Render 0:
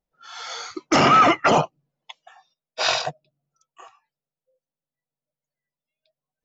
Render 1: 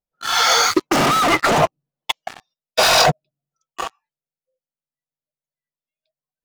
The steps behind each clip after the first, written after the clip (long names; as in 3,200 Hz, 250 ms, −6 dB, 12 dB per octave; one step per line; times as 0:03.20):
dynamic equaliser 3,200 Hz, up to −4 dB, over −36 dBFS, Q 0.9
leveller curve on the samples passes 5
compressor whose output falls as the input rises −14 dBFS, ratio −1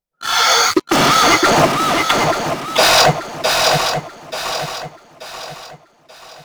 feedback echo with a long and a short gap by turns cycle 883 ms, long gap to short 3 to 1, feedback 38%, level −4 dB
level +2.5 dB